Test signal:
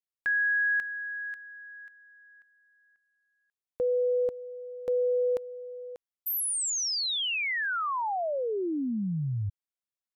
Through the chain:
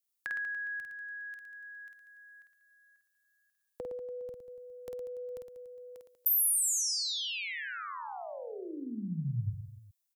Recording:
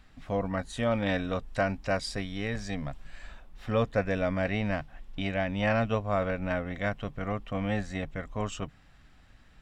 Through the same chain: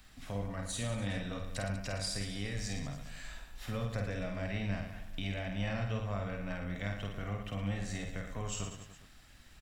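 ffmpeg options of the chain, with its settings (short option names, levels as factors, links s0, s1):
-filter_complex "[0:a]acrossover=split=170[s0][s1];[s1]acompressor=threshold=0.00316:ratio=2:attack=39:release=143:knee=2.83:detection=peak[s2];[s0][s2]amix=inputs=2:normalize=0,crystalizer=i=3.5:c=0,aecho=1:1:50|112.5|190.6|288.3|410.4:0.631|0.398|0.251|0.158|0.1,volume=0.631"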